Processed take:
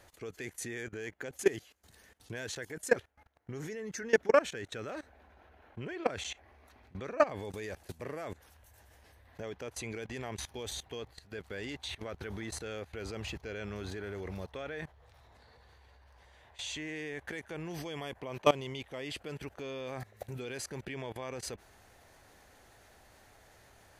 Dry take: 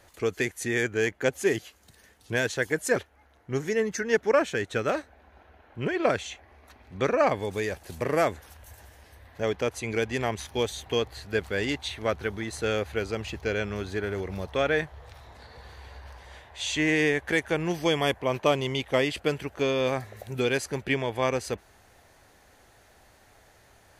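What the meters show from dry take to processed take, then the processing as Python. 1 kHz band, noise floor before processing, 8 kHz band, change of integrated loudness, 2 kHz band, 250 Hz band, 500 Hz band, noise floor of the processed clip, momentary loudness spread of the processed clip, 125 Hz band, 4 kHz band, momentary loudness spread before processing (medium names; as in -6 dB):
-8.0 dB, -59 dBFS, -6.0 dB, -9.5 dB, -11.0 dB, -11.0 dB, -8.5 dB, -62 dBFS, 15 LU, -10.0 dB, -9.5 dB, 9 LU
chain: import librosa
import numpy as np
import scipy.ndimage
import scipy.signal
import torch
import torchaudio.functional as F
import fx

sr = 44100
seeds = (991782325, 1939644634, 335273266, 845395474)

y = fx.level_steps(x, sr, step_db=20)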